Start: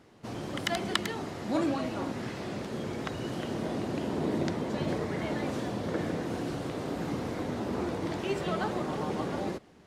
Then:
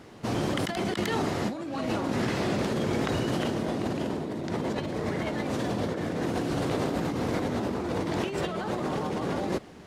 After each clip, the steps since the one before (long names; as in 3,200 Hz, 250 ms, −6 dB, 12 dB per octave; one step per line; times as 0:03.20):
compressor whose output falls as the input rises −36 dBFS, ratio −1
level +6.5 dB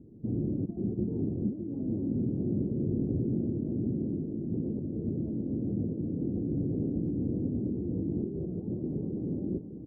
inverse Chebyshev low-pass filter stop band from 2,000 Hz, stop band 80 dB
single-tap delay 601 ms −9 dB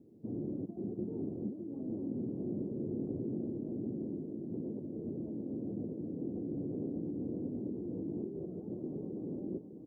high-pass filter 600 Hz 6 dB per octave
level +1.5 dB